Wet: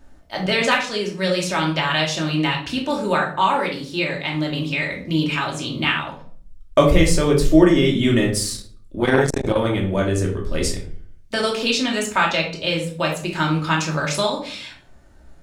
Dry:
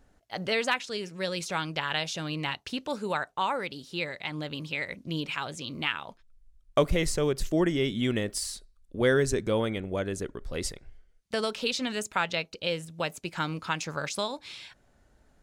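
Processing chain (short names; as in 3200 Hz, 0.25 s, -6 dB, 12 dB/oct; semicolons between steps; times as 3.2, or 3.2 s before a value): shoebox room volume 500 m³, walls furnished, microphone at 2.7 m; 8.53–9.78 core saturation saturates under 670 Hz; gain +6 dB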